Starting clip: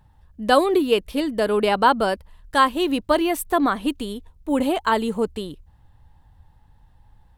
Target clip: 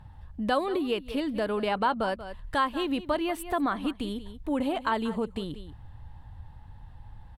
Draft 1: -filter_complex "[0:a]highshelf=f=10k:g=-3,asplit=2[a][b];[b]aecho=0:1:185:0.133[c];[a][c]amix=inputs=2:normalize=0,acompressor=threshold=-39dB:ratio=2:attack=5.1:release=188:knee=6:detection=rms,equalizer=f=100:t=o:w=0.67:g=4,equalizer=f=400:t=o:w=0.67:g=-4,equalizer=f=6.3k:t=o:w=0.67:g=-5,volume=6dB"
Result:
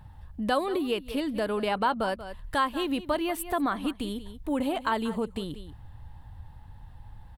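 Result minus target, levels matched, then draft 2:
8000 Hz band +5.0 dB
-filter_complex "[0:a]highshelf=f=10k:g=-14.5,asplit=2[a][b];[b]aecho=0:1:185:0.133[c];[a][c]amix=inputs=2:normalize=0,acompressor=threshold=-39dB:ratio=2:attack=5.1:release=188:knee=6:detection=rms,equalizer=f=100:t=o:w=0.67:g=4,equalizer=f=400:t=o:w=0.67:g=-4,equalizer=f=6.3k:t=o:w=0.67:g=-5,volume=6dB"

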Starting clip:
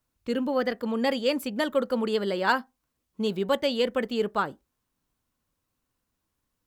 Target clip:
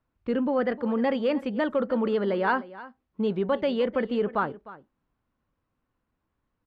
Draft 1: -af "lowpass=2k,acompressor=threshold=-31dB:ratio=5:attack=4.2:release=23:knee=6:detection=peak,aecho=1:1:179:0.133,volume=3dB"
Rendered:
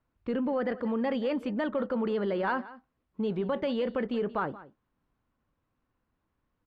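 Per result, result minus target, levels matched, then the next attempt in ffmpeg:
echo 0.126 s early; compressor: peak gain reduction +6 dB
-af "lowpass=2k,acompressor=threshold=-31dB:ratio=5:attack=4.2:release=23:knee=6:detection=peak,aecho=1:1:305:0.133,volume=3dB"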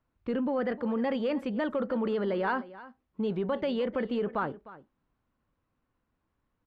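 compressor: peak gain reduction +6 dB
-af "lowpass=2k,acompressor=threshold=-23.5dB:ratio=5:attack=4.2:release=23:knee=6:detection=peak,aecho=1:1:305:0.133,volume=3dB"

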